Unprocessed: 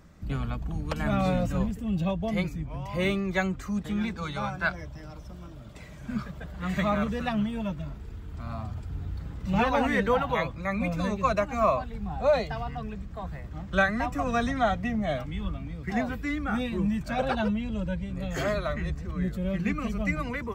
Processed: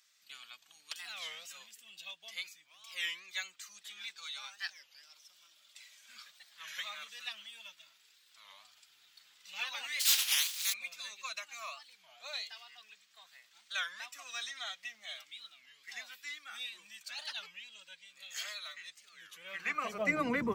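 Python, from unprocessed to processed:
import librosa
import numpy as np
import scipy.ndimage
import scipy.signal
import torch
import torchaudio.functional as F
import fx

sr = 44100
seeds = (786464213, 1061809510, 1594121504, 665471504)

y = fx.spec_flatten(x, sr, power=0.26, at=(10.0, 10.72), fade=0.02)
y = fx.filter_sweep_highpass(y, sr, from_hz=3500.0, to_hz=180.0, start_s=19.23, end_s=20.44, q=1.2)
y = fx.record_warp(y, sr, rpm=33.33, depth_cents=250.0)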